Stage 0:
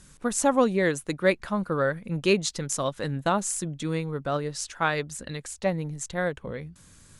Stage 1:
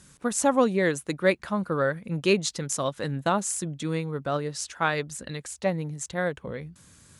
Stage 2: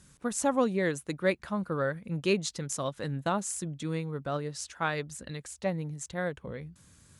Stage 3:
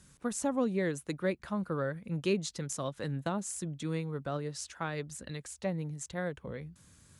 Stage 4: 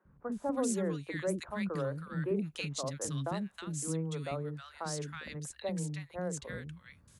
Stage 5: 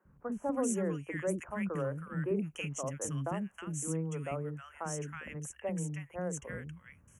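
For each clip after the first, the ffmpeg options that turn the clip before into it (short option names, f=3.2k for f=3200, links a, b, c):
-af "highpass=67"
-af "lowshelf=f=130:g=5.5,volume=-5.5dB"
-filter_complex "[0:a]acrossover=split=450[a][b];[b]acompressor=threshold=-34dB:ratio=3[c];[a][c]amix=inputs=2:normalize=0,volume=-1.5dB"
-filter_complex "[0:a]acrossover=split=330|1400[a][b][c];[a]adelay=50[d];[c]adelay=320[e];[d][b][e]amix=inputs=3:normalize=0"
-af "asuperstop=centerf=4200:order=12:qfactor=1.7"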